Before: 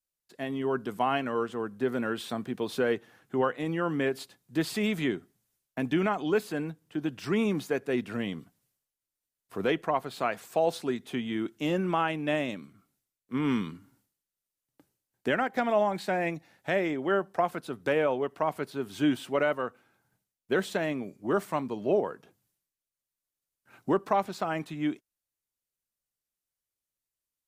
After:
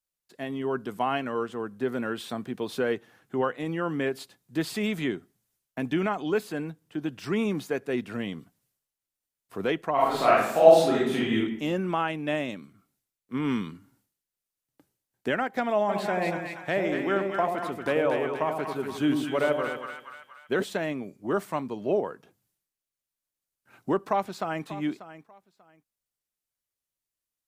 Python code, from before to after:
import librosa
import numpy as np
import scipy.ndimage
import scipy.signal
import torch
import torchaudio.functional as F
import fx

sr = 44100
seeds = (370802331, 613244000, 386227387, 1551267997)

y = fx.reverb_throw(x, sr, start_s=9.94, length_s=1.41, rt60_s=0.8, drr_db=-8.5)
y = fx.echo_split(y, sr, split_hz=940.0, low_ms=87, high_ms=237, feedback_pct=52, wet_db=-4.0, at=(15.88, 20.62), fade=0.02)
y = fx.echo_throw(y, sr, start_s=24.04, length_s=0.61, ms=590, feedback_pct=20, wet_db=-14.5)